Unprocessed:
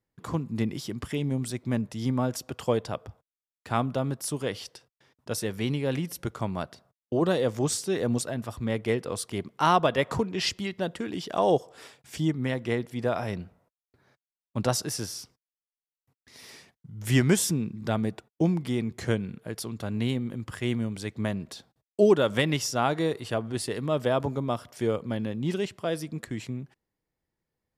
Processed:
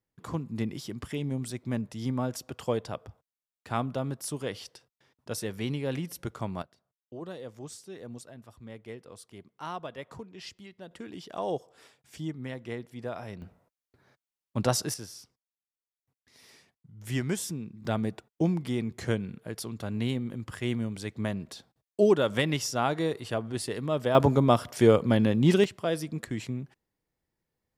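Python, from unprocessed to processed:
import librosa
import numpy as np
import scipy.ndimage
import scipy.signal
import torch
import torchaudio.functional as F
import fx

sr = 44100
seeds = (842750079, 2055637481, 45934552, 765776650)

y = fx.gain(x, sr, db=fx.steps((0.0, -3.5), (6.62, -16.0), (10.91, -9.0), (13.42, 0.0), (14.94, -8.5), (17.85, -2.0), (24.15, 7.5), (25.64, 0.5)))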